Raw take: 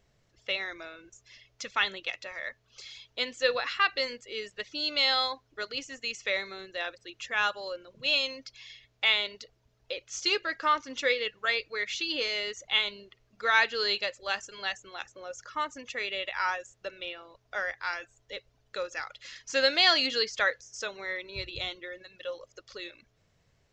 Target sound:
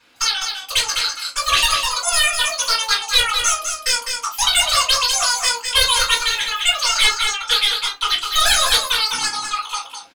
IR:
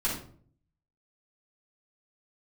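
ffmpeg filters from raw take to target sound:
-filter_complex "[0:a]asplit=2[link_01][link_02];[link_02]alimiter=limit=-19.5dB:level=0:latency=1,volume=-2dB[link_03];[link_01][link_03]amix=inputs=2:normalize=0,asoftclip=type=tanh:threshold=-18dB,bandpass=frequency=1100:width_type=q:width=1.3:csg=0,aresample=16000,aeval=exprs='0.133*sin(PI/2*2.51*val(0)/0.133)':channel_layout=same,aresample=44100,aecho=1:1:478:0.501[link_04];[1:a]atrim=start_sample=2205,afade=type=out:start_time=0.32:duration=0.01,atrim=end_sample=14553[link_05];[link_04][link_05]afir=irnorm=-1:irlink=0,asetrate=103194,aresample=44100"

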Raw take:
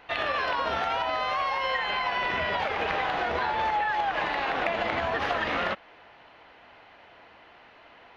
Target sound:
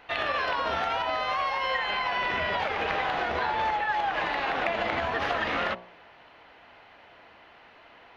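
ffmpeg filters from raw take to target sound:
ffmpeg -i in.wav -af "bandreject=frequency=59.89:width_type=h:width=4,bandreject=frequency=119.78:width_type=h:width=4,bandreject=frequency=179.67:width_type=h:width=4,bandreject=frequency=239.56:width_type=h:width=4,bandreject=frequency=299.45:width_type=h:width=4,bandreject=frequency=359.34:width_type=h:width=4,bandreject=frequency=419.23:width_type=h:width=4,bandreject=frequency=479.12:width_type=h:width=4,bandreject=frequency=539.01:width_type=h:width=4,bandreject=frequency=598.9:width_type=h:width=4,bandreject=frequency=658.79:width_type=h:width=4,bandreject=frequency=718.68:width_type=h:width=4,bandreject=frequency=778.57:width_type=h:width=4,bandreject=frequency=838.46:width_type=h:width=4,bandreject=frequency=898.35:width_type=h:width=4,bandreject=frequency=958.24:width_type=h:width=4,bandreject=frequency=1018.13:width_type=h:width=4,bandreject=frequency=1078.02:width_type=h:width=4,bandreject=frequency=1137.91:width_type=h:width=4" out.wav

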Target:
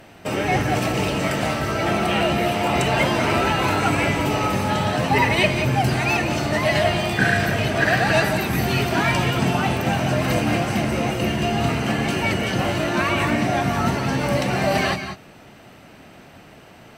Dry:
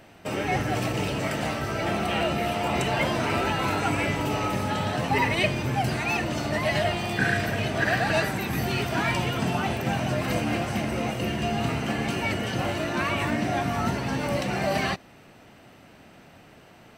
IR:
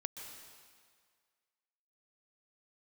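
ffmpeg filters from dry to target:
-filter_complex "[1:a]atrim=start_sample=2205,afade=type=out:start_time=0.19:duration=0.01,atrim=end_sample=8820,asetrate=30870,aresample=44100[link_01];[0:a][link_01]afir=irnorm=-1:irlink=0,volume=6.5dB"

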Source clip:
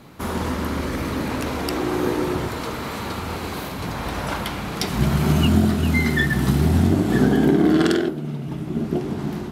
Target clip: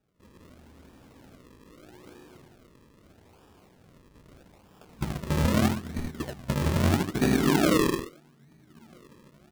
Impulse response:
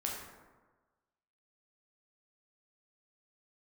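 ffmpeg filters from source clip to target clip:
-af "agate=range=-23dB:threshold=-16dB:ratio=16:detection=peak,aecho=1:1:78:0.668,acrusher=samples=41:mix=1:aa=0.000001:lfo=1:lforange=41:lforate=0.79,volume=-6.5dB"

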